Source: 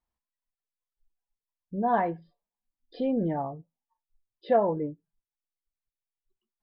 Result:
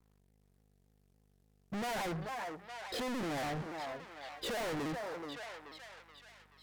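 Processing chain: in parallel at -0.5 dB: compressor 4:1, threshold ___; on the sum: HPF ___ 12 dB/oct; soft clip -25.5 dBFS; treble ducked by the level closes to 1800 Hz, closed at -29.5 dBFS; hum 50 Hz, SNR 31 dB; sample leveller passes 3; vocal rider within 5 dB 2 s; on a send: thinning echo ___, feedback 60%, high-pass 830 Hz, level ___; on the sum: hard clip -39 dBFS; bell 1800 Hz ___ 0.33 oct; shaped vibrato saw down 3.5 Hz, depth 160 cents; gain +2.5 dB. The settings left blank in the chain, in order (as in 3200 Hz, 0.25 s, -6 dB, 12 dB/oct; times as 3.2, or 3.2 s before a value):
-41 dBFS, 160 Hz, 0.429 s, -9 dB, +3.5 dB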